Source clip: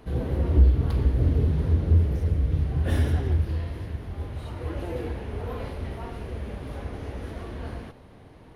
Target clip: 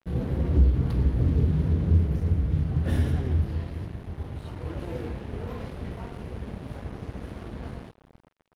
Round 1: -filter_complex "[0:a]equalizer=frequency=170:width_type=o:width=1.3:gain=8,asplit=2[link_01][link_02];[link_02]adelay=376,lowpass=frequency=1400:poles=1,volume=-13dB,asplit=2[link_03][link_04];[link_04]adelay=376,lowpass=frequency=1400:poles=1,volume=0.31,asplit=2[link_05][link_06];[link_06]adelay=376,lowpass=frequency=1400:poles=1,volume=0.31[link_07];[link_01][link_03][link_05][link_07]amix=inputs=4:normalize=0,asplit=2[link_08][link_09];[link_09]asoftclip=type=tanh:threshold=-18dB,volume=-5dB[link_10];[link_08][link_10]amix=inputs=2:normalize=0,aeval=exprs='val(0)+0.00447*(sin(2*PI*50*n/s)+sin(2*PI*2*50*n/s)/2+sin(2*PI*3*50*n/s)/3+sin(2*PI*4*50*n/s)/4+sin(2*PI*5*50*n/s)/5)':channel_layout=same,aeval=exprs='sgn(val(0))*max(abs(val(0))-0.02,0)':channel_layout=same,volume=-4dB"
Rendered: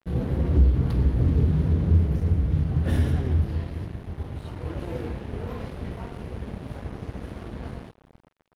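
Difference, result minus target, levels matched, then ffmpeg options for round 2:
soft clipping: distortion −7 dB
-filter_complex "[0:a]equalizer=frequency=170:width_type=o:width=1.3:gain=8,asplit=2[link_01][link_02];[link_02]adelay=376,lowpass=frequency=1400:poles=1,volume=-13dB,asplit=2[link_03][link_04];[link_04]adelay=376,lowpass=frequency=1400:poles=1,volume=0.31,asplit=2[link_05][link_06];[link_06]adelay=376,lowpass=frequency=1400:poles=1,volume=0.31[link_07];[link_01][link_03][link_05][link_07]amix=inputs=4:normalize=0,asplit=2[link_08][link_09];[link_09]asoftclip=type=tanh:threshold=-29dB,volume=-5dB[link_10];[link_08][link_10]amix=inputs=2:normalize=0,aeval=exprs='val(0)+0.00447*(sin(2*PI*50*n/s)+sin(2*PI*2*50*n/s)/2+sin(2*PI*3*50*n/s)/3+sin(2*PI*4*50*n/s)/4+sin(2*PI*5*50*n/s)/5)':channel_layout=same,aeval=exprs='sgn(val(0))*max(abs(val(0))-0.02,0)':channel_layout=same,volume=-4dB"

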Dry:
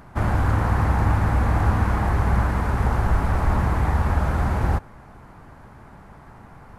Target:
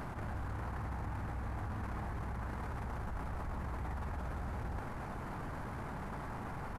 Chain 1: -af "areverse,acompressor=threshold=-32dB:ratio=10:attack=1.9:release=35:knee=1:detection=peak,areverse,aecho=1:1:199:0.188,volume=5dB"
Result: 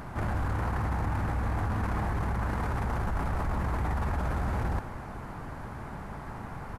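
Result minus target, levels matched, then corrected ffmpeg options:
downward compressor: peak gain reduction −10.5 dB
-af "areverse,acompressor=threshold=-43.5dB:ratio=10:attack=1.9:release=35:knee=1:detection=peak,areverse,aecho=1:1:199:0.188,volume=5dB"

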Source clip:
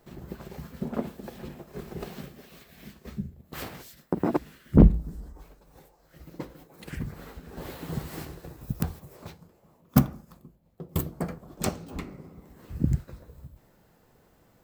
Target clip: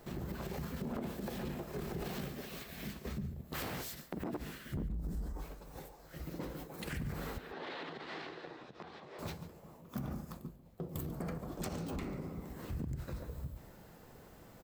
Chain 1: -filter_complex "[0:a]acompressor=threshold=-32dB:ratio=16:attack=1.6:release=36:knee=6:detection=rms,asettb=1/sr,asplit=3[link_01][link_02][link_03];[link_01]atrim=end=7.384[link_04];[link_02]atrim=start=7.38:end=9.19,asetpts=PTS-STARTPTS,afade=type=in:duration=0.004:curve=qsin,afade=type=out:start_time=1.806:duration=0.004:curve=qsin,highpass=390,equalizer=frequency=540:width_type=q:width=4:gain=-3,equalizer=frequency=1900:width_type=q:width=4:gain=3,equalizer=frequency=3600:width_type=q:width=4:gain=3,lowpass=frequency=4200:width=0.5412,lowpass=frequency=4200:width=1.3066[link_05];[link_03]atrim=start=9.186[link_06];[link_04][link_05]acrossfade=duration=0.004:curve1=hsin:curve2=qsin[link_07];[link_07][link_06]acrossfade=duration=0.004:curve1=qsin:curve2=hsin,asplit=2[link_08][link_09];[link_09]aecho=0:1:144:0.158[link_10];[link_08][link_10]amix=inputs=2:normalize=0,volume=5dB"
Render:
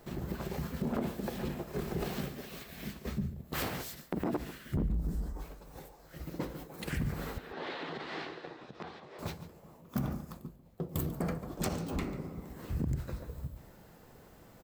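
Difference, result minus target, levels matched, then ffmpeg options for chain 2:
downward compressor: peak gain reduction −7 dB
-filter_complex "[0:a]acompressor=threshold=-39.5dB:ratio=16:attack=1.6:release=36:knee=6:detection=rms,asettb=1/sr,asplit=3[link_01][link_02][link_03];[link_01]atrim=end=7.384[link_04];[link_02]atrim=start=7.38:end=9.19,asetpts=PTS-STARTPTS,afade=type=in:duration=0.004:curve=qsin,afade=type=out:start_time=1.806:duration=0.004:curve=qsin,highpass=390,equalizer=frequency=540:width_type=q:width=4:gain=-3,equalizer=frequency=1900:width_type=q:width=4:gain=3,equalizer=frequency=3600:width_type=q:width=4:gain=3,lowpass=frequency=4200:width=0.5412,lowpass=frequency=4200:width=1.3066[link_05];[link_03]atrim=start=9.186[link_06];[link_04][link_05]acrossfade=duration=0.004:curve1=hsin:curve2=qsin[link_07];[link_07][link_06]acrossfade=duration=0.004:curve1=qsin:curve2=hsin,asplit=2[link_08][link_09];[link_09]aecho=0:1:144:0.158[link_10];[link_08][link_10]amix=inputs=2:normalize=0,volume=5dB"

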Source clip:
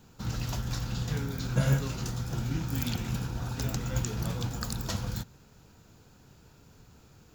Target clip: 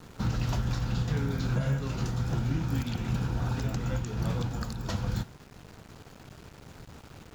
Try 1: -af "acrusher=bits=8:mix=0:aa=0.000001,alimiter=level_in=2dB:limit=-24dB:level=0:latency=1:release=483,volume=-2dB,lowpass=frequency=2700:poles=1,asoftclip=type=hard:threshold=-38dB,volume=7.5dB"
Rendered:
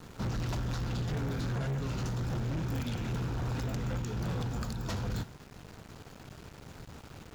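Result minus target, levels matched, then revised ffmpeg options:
hard clipping: distortion +24 dB
-af "acrusher=bits=8:mix=0:aa=0.000001,alimiter=level_in=2dB:limit=-24dB:level=0:latency=1:release=483,volume=-2dB,lowpass=frequency=2700:poles=1,asoftclip=type=hard:threshold=-28dB,volume=7.5dB"

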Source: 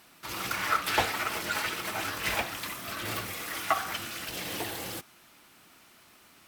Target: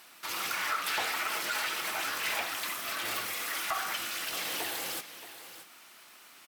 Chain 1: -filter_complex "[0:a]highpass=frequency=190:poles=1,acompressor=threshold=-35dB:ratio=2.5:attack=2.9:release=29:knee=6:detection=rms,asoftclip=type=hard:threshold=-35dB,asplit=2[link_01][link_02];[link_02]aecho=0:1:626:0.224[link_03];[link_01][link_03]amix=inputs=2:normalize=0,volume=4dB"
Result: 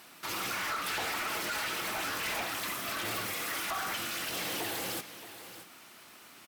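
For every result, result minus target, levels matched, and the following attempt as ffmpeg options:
hard clipping: distortion +17 dB; 250 Hz band +7.0 dB
-filter_complex "[0:a]highpass=frequency=190:poles=1,acompressor=threshold=-35dB:ratio=2.5:attack=2.9:release=29:knee=6:detection=rms,asoftclip=type=hard:threshold=-27.5dB,asplit=2[link_01][link_02];[link_02]aecho=0:1:626:0.224[link_03];[link_01][link_03]amix=inputs=2:normalize=0,volume=4dB"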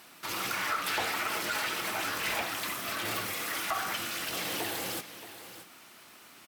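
250 Hz band +6.5 dB
-filter_complex "[0:a]highpass=frequency=760:poles=1,acompressor=threshold=-35dB:ratio=2.5:attack=2.9:release=29:knee=6:detection=rms,asoftclip=type=hard:threshold=-27.5dB,asplit=2[link_01][link_02];[link_02]aecho=0:1:626:0.224[link_03];[link_01][link_03]amix=inputs=2:normalize=0,volume=4dB"

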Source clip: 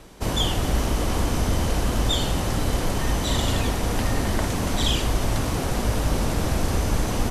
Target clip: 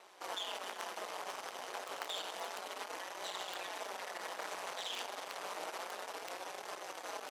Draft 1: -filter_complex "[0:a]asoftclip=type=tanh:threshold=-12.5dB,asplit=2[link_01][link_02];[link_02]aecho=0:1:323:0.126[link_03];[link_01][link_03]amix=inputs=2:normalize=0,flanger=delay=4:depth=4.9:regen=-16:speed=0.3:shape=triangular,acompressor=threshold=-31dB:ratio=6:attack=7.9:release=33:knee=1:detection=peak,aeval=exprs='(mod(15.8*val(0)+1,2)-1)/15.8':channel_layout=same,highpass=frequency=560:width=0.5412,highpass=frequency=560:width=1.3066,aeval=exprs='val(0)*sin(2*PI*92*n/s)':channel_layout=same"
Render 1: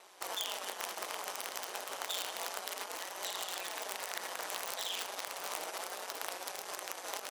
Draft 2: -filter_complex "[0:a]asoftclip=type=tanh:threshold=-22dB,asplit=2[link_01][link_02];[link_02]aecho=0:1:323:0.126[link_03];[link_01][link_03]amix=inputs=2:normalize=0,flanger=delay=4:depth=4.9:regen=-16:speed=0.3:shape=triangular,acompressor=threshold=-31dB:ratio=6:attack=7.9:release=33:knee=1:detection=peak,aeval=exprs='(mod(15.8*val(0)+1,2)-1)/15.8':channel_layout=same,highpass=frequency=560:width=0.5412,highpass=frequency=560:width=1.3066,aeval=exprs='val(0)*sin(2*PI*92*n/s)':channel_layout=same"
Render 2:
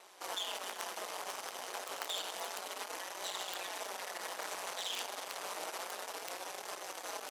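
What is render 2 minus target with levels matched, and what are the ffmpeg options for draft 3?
8,000 Hz band +4.0 dB
-filter_complex "[0:a]asoftclip=type=tanh:threshold=-22dB,asplit=2[link_01][link_02];[link_02]aecho=0:1:323:0.126[link_03];[link_01][link_03]amix=inputs=2:normalize=0,flanger=delay=4:depth=4.9:regen=-16:speed=0.3:shape=triangular,acompressor=threshold=-31dB:ratio=6:attack=7.9:release=33:knee=1:detection=peak,aeval=exprs='(mod(15.8*val(0)+1,2)-1)/15.8':channel_layout=same,highpass=frequency=560:width=0.5412,highpass=frequency=560:width=1.3066,highshelf=frequency=5500:gain=-9,aeval=exprs='val(0)*sin(2*PI*92*n/s)':channel_layout=same"

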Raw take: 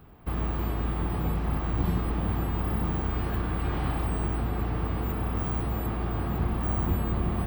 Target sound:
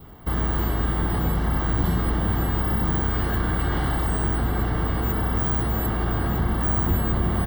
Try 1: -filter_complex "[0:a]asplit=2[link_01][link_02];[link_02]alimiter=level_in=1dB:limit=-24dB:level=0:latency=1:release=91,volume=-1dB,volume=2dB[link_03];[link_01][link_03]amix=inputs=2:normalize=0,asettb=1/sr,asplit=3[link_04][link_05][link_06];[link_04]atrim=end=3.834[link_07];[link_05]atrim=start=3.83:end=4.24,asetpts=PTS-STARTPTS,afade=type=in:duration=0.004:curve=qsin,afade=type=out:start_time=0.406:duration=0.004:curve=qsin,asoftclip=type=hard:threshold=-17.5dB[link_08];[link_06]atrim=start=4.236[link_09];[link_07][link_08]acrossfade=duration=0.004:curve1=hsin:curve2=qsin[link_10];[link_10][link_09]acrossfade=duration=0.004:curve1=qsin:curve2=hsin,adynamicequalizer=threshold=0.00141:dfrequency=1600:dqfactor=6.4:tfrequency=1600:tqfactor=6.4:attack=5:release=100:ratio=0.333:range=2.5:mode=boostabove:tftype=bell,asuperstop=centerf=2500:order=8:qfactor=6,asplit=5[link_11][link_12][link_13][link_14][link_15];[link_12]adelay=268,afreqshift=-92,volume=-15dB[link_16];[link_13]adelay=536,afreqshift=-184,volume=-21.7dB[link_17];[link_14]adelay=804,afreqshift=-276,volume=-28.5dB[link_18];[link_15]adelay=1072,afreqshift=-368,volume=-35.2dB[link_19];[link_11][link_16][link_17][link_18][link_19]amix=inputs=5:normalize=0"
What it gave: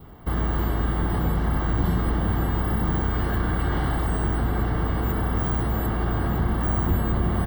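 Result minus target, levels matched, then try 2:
8,000 Hz band −3.5 dB
-filter_complex "[0:a]asplit=2[link_01][link_02];[link_02]alimiter=level_in=1dB:limit=-24dB:level=0:latency=1:release=91,volume=-1dB,volume=2dB[link_03];[link_01][link_03]amix=inputs=2:normalize=0,asettb=1/sr,asplit=3[link_04][link_05][link_06];[link_04]atrim=end=3.834[link_07];[link_05]atrim=start=3.83:end=4.24,asetpts=PTS-STARTPTS,afade=type=in:duration=0.004:curve=qsin,afade=type=out:start_time=0.406:duration=0.004:curve=qsin,asoftclip=type=hard:threshold=-17.5dB[link_08];[link_06]atrim=start=4.236[link_09];[link_07][link_08]acrossfade=duration=0.004:curve1=hsin:curve2=qsin[link_10];[link_10][link_09]acrossfade=duration=0.004:curve1=qsin:curve2=hsin,adynamicequalizer=threshold=0.00141:dfrequency=1600:dqfactor=6.4:tfrequency=1600:tqfactor=6.4:attack=5:release=100:ratio=0.333:range=2.5:mode=boostabove:tftype=bell,asuperstop=centerf=2500:order=8:qfactor=6,highshelf=frequency=3000:gain=5,asplit=5[link_11][link_12][link_13][link_14][link_15];[link_12]adelay=268,afreqshift=-92,volume=-15dB[link_16];[link_13]adelay=536,afreqshift=-184,volume=-21.7dB[link_17];[link_14]adelay=804,afreqshift=-276,volume=-28.5dB[link_18];[link_15]adelay=1072,afreqshift=-368,volume=-35.2dB[link_19];[link_11][link_16][link_17][link_18][link_19]amix=inputs=5:normalize=0"

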